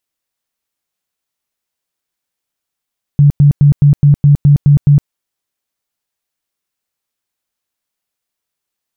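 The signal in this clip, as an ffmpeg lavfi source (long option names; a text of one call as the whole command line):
ffmpeg -f lavfi -i "aevalsrc='0.708*sin(2*PI*144*mod(t,0.21))*lt(mod(t,0.21),16/144)':duration=1.89:sample_rate=44100" out.wav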